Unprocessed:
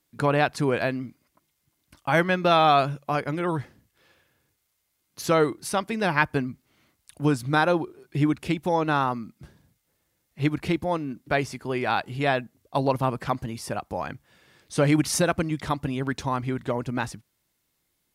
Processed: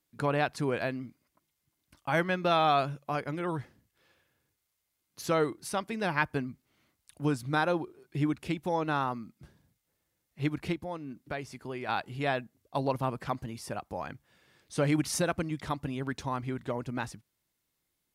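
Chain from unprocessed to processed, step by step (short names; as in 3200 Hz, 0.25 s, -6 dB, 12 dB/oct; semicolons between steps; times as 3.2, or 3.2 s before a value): 10.73–11.89 compressor 2:1, threshold -31 dBFS, peak gain reduction 7.5 dB; gain -6.5 dB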